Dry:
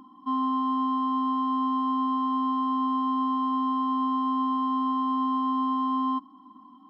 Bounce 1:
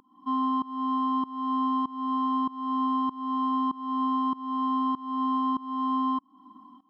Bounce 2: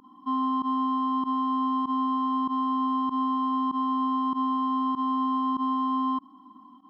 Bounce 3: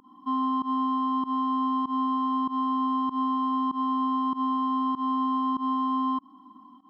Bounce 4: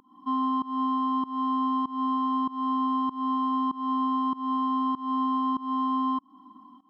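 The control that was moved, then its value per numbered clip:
volume shaper, release: 415 ms, 66 ms, 113 ms, 255 ms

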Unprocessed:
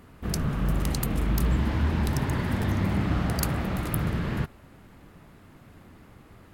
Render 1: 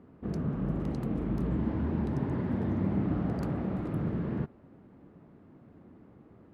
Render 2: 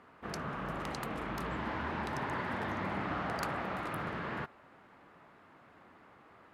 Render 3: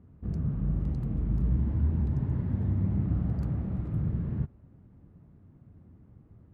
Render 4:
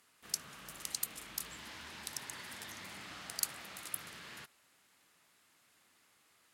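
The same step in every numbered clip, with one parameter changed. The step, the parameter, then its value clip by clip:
band-pass filter, frequency: 290 Hz, 1.1 kHz, 100 Hz, 7.7 kHz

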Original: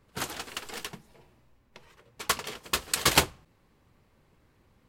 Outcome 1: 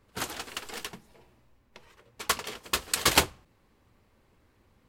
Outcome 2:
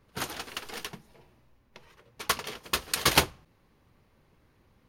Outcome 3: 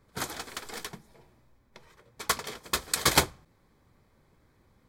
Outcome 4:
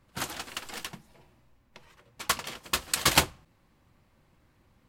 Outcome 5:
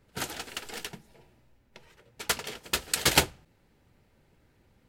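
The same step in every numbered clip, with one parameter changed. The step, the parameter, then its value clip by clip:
band-stop, frequency: 150 Hz, 7.7 kHz, 2.8 kHz, 430 Hz, 1.1 kHz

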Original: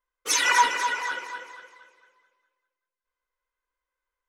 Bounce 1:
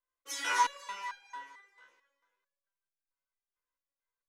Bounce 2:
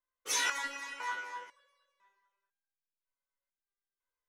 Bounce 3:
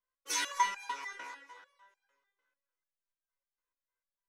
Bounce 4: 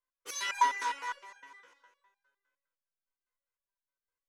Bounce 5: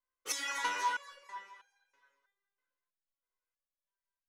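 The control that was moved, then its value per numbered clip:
resonator arpeggio, rate: 4.5 Hz, 2 Hz, 6.7 Hz, 9.8 Hz, 3.1 Hz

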